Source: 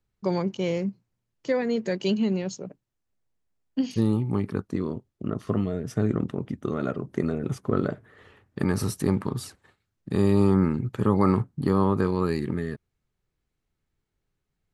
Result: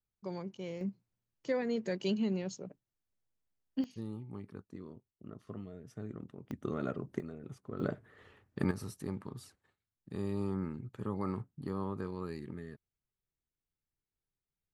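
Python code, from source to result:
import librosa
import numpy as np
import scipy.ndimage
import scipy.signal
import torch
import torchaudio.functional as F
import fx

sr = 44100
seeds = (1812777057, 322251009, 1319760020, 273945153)

y = fx.gain(x, sr, db=fx.steps((0.0, -15.0), (0.81, -8.0), (3.84, -19.0), (6.51, -8.0), (7.2, -18.0), (7.8, -6.5), (8.71, -15.5)))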